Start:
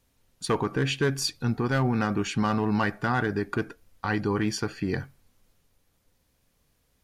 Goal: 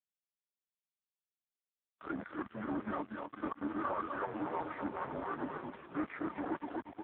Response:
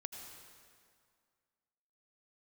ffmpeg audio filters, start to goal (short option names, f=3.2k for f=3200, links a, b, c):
-filter_complex "[0:a]areverse,asplit=2[a][b];[b]aecho=0:1:245|490|735|980:0.335|0.134|0.0536|0.0214[c];[a][c]amix=inputs=2:normalize=0,asoftclip=type=tanh:threshold=-31dB,highpass=f=360:t=q:w=0.5412,highpass=f=360:t=q:w=1.307,lowpass=f=2.3k:t=q:w=0.5176,lowpass=f=2.3k:t=q:w=0.7071,lowpass=f=2.3k:t=q:w=1.932,afreqshift=-54,aeval=exprs='sgn(val(0))*max(abs(val(0))-0.00266,0)':c=same,agate=range=-29dB:threshold=-52dB:ratio=16:detection=peak,asetrate=36028,aresample=44100,atempo=1.22405,volume=4dB" -ar 8000 -c:a libopencore_amrnb -b:a 4750